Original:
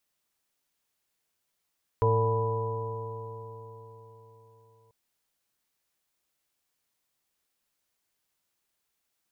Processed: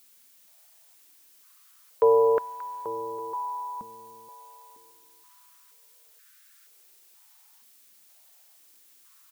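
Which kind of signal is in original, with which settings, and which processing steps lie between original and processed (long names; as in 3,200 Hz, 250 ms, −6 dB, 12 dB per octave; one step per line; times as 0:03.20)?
stiff-string partials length 2.89 s, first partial 110 Hz, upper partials −18/−18/0.5/−14.5/−20/−17.5/−2.5 dB, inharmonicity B 0.004, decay 4.29 s, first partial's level −23.5 dB
background noise blue −58 dBFS
repeating echo 583 ms, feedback 30%, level −11 dB
high-pass on a step sequencer 2.1 Hz 220–1,500 Hz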